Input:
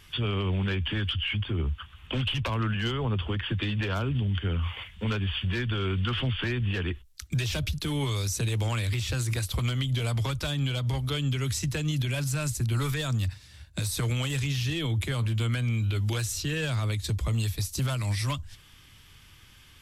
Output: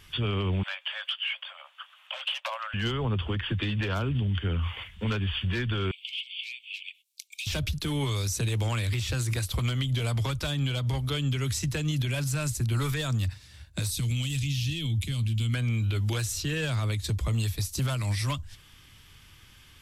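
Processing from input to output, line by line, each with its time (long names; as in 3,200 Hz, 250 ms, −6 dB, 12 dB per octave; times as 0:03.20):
0:00.63–0:02.74: Chebyshev high-pass filter 540 Hz, order 10
0:05.91–0:07.47: Chebyshev high-pass filter 2,200 Hz, order 8
0:13.90–0:15.54: flat-topped bell 820 Hz −14.5 dB 2.7 octaves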